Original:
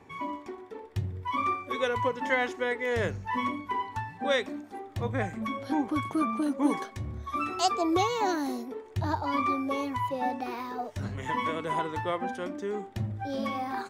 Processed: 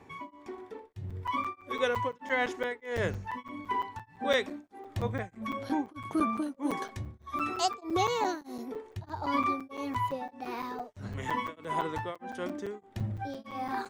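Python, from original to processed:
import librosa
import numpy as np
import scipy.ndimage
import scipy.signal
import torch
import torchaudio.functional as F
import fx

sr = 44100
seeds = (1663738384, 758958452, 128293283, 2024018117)

y = fx.buffer_crackle(x, sr, first_s=0.93, period_s=0.17, block=256, kind='zero')
y = y * np.abs(np.cos(np.pi * 1.6 * np.arange(len(y)) / sr))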